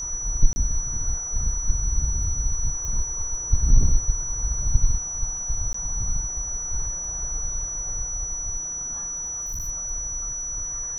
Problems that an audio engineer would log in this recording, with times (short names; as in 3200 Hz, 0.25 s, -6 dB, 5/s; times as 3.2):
tone 5900 Hz -28 dBFS
0.53–0.56 gap 30 ms
2.85 pop -19 dBFS
5.73–5.74 gap 14 ms
9.25–9.69 clipped -26.5 dBFS